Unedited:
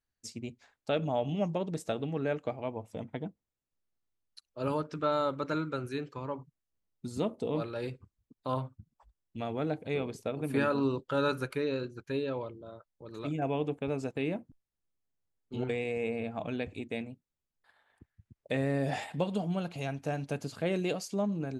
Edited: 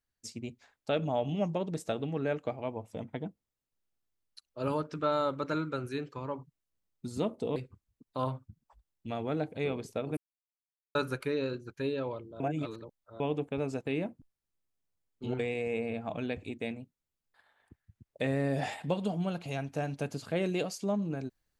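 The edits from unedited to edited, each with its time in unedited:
7.56–7.86 s: delete
10.47–11.25 s: mute
12.70–13.50 s: reverse

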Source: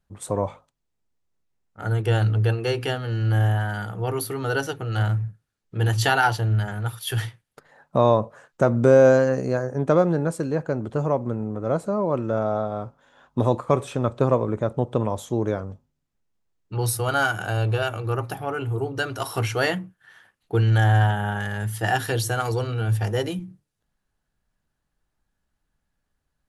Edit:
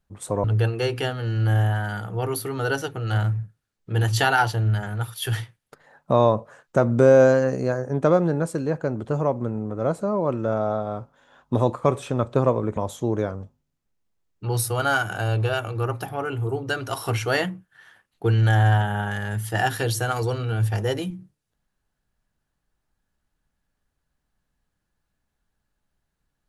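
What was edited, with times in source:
0.44–2.29 s: delete
14.62–15.06 s: delete

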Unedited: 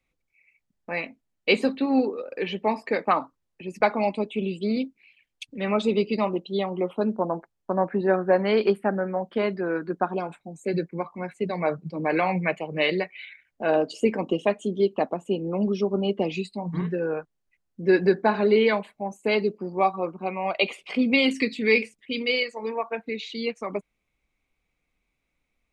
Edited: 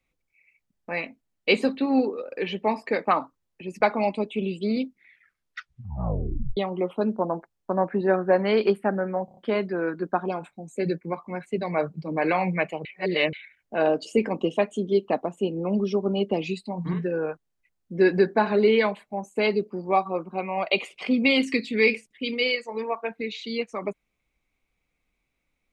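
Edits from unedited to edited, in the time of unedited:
4.84 s: tape stop 1.73 s
9.25 s: stutter 0.03 s, 5 plays
12.73–13.21 s: reverse

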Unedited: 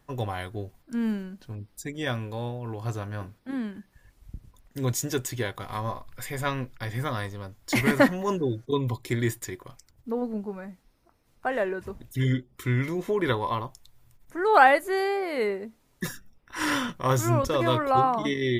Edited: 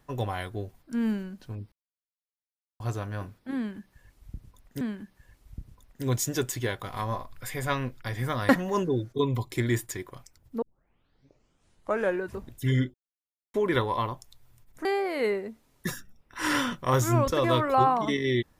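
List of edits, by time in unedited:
1.72–2.80 s: mute
3.57–4.81 s: loop, 2 plays
7.25–8.02 s: delete
10.15 s: tape start 1.59 s
12.47–13.07 s: mute
14.38–15.02 s: delete

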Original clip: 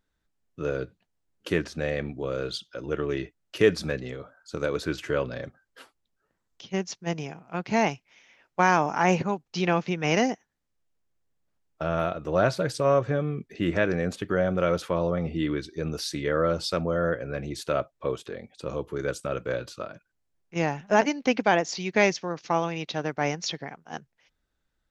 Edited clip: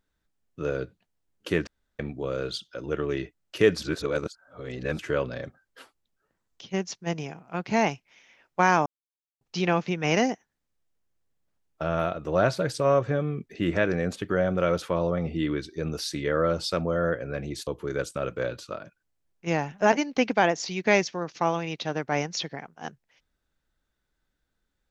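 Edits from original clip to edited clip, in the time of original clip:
1.67–1.99 s: room tone
3.82–4.99 s: reverse
8.86–9.41 s: mute
17.67–18.76 s: delete

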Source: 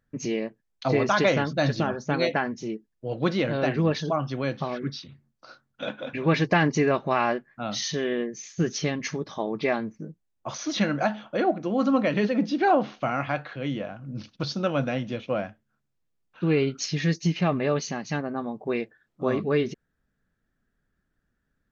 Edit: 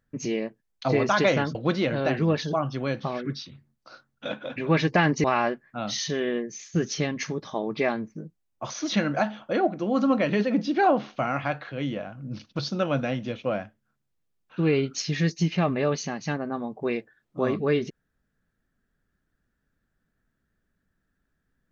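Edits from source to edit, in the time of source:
1.55–3.12 s: delete
6.81–7.08 s: delete

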